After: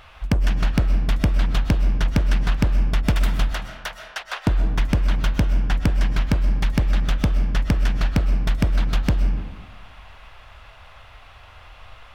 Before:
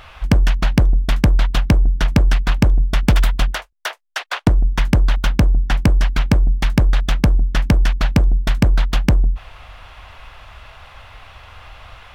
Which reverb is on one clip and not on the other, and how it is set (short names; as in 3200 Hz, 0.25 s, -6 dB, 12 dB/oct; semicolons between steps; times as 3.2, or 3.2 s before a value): digital reverb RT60 1.3 s, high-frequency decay 0.55×, pre-delay 85 ms, DRR 6.5 dB; gain -6 dB